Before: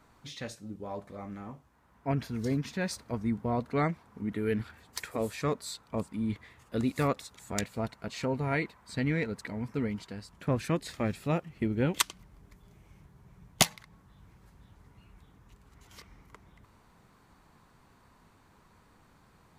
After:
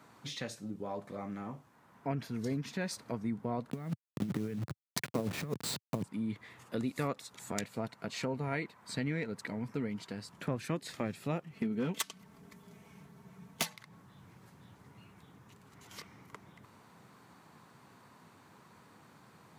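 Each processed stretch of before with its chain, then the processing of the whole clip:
3.70–6.04 s: send-on-delta sampling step -37.5 dBFS + peaking EQ 130 Hz +12 dB 2.1 oct + compressor with a negative ratio -28 dBFS, ratio -0.5
11.53–13.71 s: comb 4.5 ms, depth 62% + hard clipper -21 dBFS
whole clip: high-pass 110 Hz 24 dB/octave; compression 2:1, threshold -42 dBFS; trim +3.5 dB

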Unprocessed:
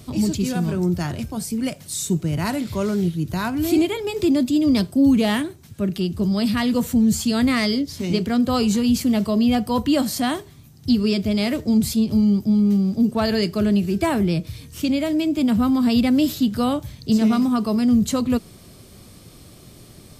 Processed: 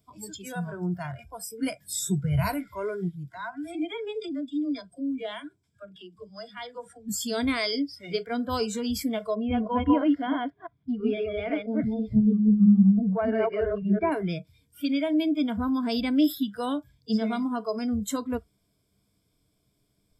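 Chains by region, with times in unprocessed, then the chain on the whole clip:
1.62–2.54 s: bass shelf 220 Hz +8 dB + doubling 14 ms -9 dB + three bands compressed up and down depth 40%
3.29–7.09 s: low-pass 10 kHz 24 dB/octave + phase dispersion lows, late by 53 ms, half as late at 310 Hz + compression 2:1, threshold -28 dBFS
9.34–14.12 s: chunks repeated in reverse 166 ms, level 0 dB + distance through air 390 m
whole clip: spectral noise reduction 22 dB; rippled EQ curve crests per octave 1.7, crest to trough 10 dB; trim -6 dB

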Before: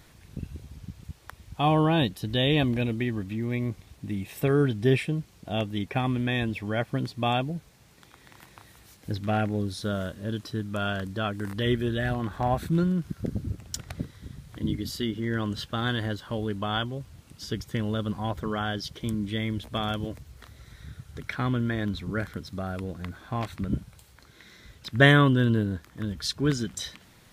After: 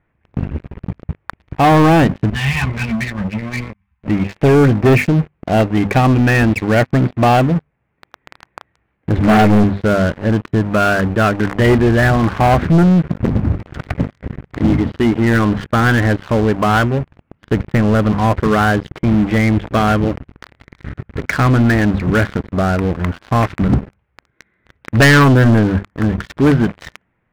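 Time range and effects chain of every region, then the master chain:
2.30–4.08 s: elliptic band-stop 200–890 Hz + comb 3.9 ms, depth 37% + three-phase chorus
9.17–9.64 s: waveshaping leveller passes 3 + three-phase chorus
whole clip: steep low-pass 2.4 kHz 36 dB/octave; hum notches 50/100/150/200/250 Hz; waveshaping leveller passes 5

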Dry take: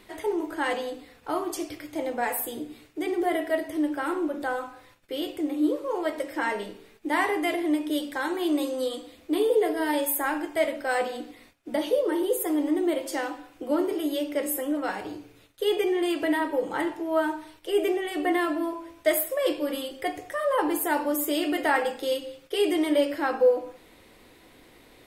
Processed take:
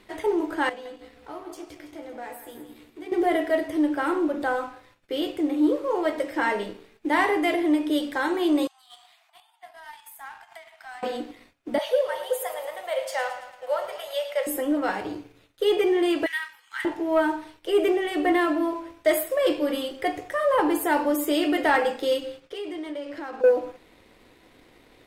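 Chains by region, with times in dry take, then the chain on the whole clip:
0.69–3.12 s: compression 2:1, threshold -51 dBFS + doubling 14 ms -7.5 dB + feedback delay 165 ms, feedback 40%, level -9 dB
8.67–11.03 s: compression 12:1, threshold -37 dBFS + brick-wall FIR high-pass 650 Hz
11.78–14.47 s: Chebyshev high-pass 510 Hz, order 6 + feedback delay 110 ms, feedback 57%, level -12 dB
16.26–16.85 s: inverse Chebyshev high-pass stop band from 590 Hz, stop band 50 dB + doubling 16 ms -14 dB
22.40–23.44 s: peaking EQ 13 kHz -12 dB 0.63 oct + compression 4:1, threshold -37 dBFS
whole clip: treble shelf 7.3 kHz -9 dB; waveshaping leveller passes 1

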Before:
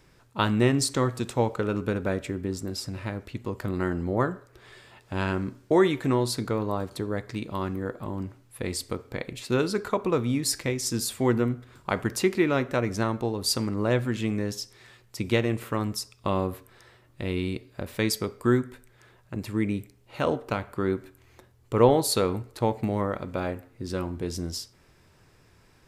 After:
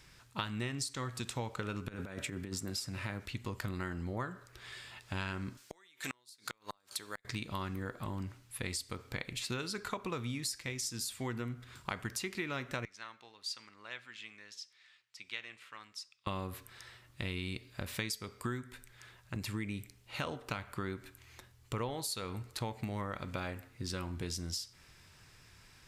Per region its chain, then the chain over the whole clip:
1.88–3.26 s: high-pass 100 Hz + dynamic bell 4.3 kHz, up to -4 dB, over -49 dBFS, Q 1 + compressor with a negative ratio -32 dBFS, ratio -0.5
5.57–7.25 s: high-pass 920 Hz 6 dB/octave + inverted gate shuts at -22 dBFS, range -36 dB + treble shelf 3.1 kHz +8.5 dB
12.85–16.27 s: low-pass 2.6 kHz + differentiator
whole clip: amplifier tone stack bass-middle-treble 5-5-5; compression 6:1, threshold -47 dBFS; treble shelf 9.1 kHz -6.5 dB; trim +12.5 dB

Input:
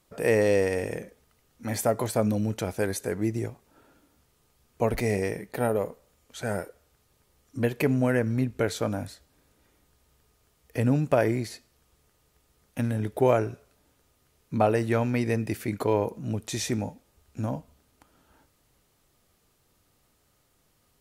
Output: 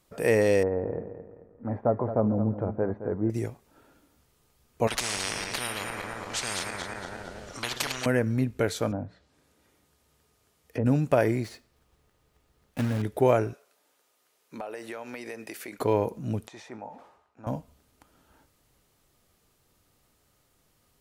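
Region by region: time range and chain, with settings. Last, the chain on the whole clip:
0.63–3.30 s: low-pass 1.2 kHz 24 dB/octave + feedback delay 218 ms, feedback 40%, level -11 dB
4.87–8.06 s: backward echo that repeats 115 ms, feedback 62%, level -9.5 dB + low-pass 5.4 kHz + spectrum-flattening compressor 10:1
8.91–10.86 s: low-pass that closes with the level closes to 850 Hz, closed at -30 dBFS + high-pass 74 Hz + hum notches 60/120/180 Hz
11.44–13.03 s: block-companded coder 3-bit + treble shelf 4.5 kHz -10 dB
13.53–15.79 s: high-pass 470 Hz + compression, threshold -34 dBFS
16.48–17.47 s: band-pass filter 940 Hz, Q 2 + decay stretcher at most 75 dB/s
whole clip: none

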